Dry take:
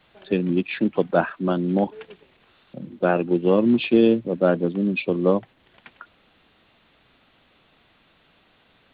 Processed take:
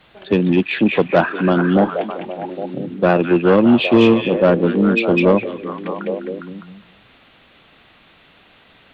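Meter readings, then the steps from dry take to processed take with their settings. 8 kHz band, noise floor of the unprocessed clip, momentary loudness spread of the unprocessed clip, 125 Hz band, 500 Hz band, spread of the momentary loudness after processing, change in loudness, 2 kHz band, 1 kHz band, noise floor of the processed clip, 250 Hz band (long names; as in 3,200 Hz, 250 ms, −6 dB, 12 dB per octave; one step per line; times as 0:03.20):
can't be measured, −61 dBFS, 8 LU, +7.0 dB, +6.0 dB, 15 LU, +5.5 dB, +9.0 dB, +7.5 dB, −51 dBFS, +6.0 dB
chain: echo through a band-pass that steps 203 ms, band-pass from 2,500 Hz, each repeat −0.7 octaves, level −1 dB
harmonic generator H 5 −18 dB, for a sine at −4.5 dBFS
level +3.5 dB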